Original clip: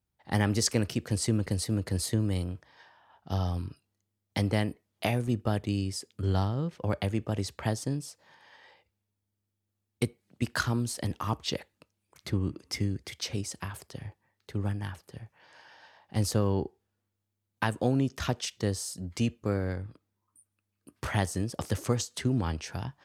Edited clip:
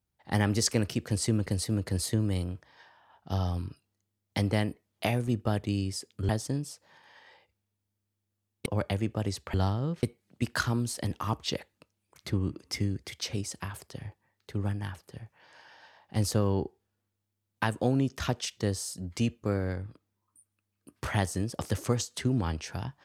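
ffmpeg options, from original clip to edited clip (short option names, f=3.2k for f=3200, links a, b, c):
-filter_complex "[0:a]asplit=5[a][b][c][d][e];[a]atrim=end=6.292[f];[b]atrim=start=7.658:end=10.032[g];[c]atrim=start=6.778:end=7.662[h];[d]atrim=start=6.288:end=6.782[i];[e]atrim=start=10.028[j];[f][g]acrossfade=d=0.004:c1=hsin:c2=hsin[k];[k][h]acrossfade=d=0.004:c1=hsin:c2=hsin[l];[l][i]acrossfade=d=0.004:c1=hsin:c2=hsin[m];[m][j]acrossfade=d=0.004:c1=hsin:c2=hsin"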